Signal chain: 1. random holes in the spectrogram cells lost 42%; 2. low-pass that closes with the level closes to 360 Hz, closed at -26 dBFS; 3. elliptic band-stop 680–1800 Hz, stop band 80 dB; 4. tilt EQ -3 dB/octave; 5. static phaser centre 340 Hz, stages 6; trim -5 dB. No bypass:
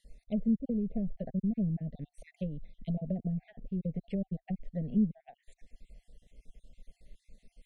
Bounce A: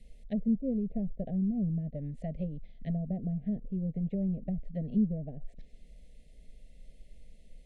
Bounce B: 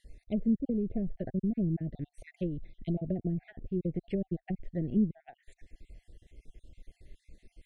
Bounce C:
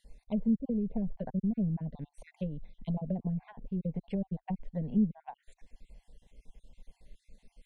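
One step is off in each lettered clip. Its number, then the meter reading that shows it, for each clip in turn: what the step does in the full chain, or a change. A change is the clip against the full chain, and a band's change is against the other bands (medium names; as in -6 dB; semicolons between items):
1, momentary loudness spread change -1 LU; 5, 500 Hz band +4.0 dB; 3, 1 kHz band +7.5 dB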